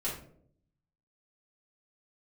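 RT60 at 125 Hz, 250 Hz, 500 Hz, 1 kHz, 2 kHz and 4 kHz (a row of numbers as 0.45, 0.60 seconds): 1.1, 0.90, 0.80, 0.50, 0.40, 0.30 seconds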